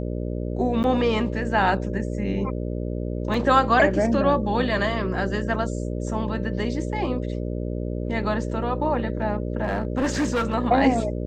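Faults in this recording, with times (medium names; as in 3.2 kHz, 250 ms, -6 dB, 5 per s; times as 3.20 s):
buzz 60 Hz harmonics 10 -28 dBFS
0.83–0.84 s: dropout 9.7 ms
3.34 s: dropout 2.8 ms
9.63–10.55 s: clipped -19 dBFS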